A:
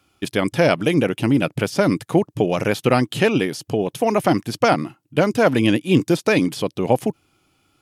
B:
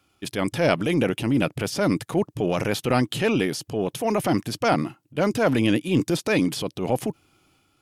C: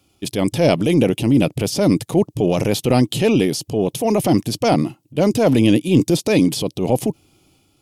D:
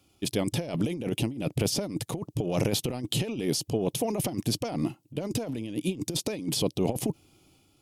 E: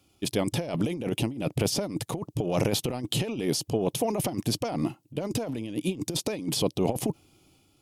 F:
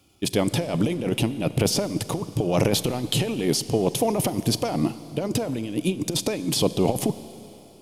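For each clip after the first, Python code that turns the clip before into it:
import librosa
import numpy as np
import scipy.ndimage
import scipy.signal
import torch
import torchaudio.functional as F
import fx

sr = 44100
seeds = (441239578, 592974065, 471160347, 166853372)

y1 = fx.transient(x, sr, attack_db=-6, sustain_db=4)
y1 = y1 * 10.0 ** (-3.0 / 20.0)
y2 = fx.peak_eq(y1, sr, hz=1500.0, db=-13.0, octaves=1.2)
y2 = y2 * 10.0 ** (7.5 / 20.0)
y3 = fx.over_compress(y2, sr, threshold_db=-19.0, ratio=-0.5)
y3 = y3 * 10.0 ** (-8.5 / 20.0)
y4 = fx.dynamic_eq(y3, sr, hz=1000.0, q=0.74, threshold_db=-43.0, ratio=4.0, max_db=4)
y5 = fx.rev_schroeder(y4, sr, rt60_s=3.2, comb_ms=31, drr_db=14.5)
y5 = y5 * 10.0 ** (4.5 / 20.0)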